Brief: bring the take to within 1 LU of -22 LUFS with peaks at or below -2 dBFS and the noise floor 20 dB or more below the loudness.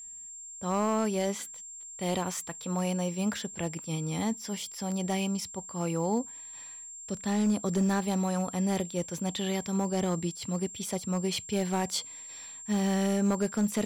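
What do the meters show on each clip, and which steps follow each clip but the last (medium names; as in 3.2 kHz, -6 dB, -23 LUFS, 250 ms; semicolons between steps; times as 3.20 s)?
clipped samples 0.9%; clipping level -21.0 dBFS; steady tone 7.4 kHz; tone level -42 dBFS; loudness -31.0 LUFS; peak level -21.0 dBFS; loudness target -22.0 LUFS
-> clip repair -21 dBFS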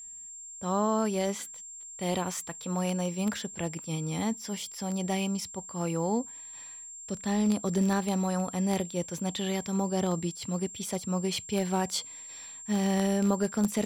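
clipped samples 0.0%; steady tone 7.4 kHz; tone level -42 dBFS
-> band-stop 7.4 kHz, Q 30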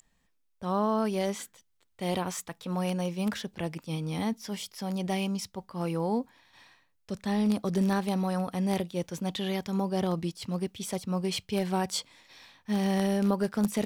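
steady tone not found; loudness -31.0 LUFS; peak level -12.5 dBFS; loudness target -22.0 LUFS
-> trim +9 dB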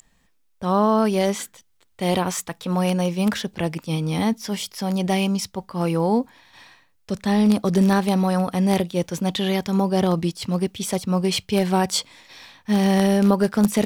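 loudness -22.0 LUFS; peak level -3.0 dBFS; noise floor -63 dBFS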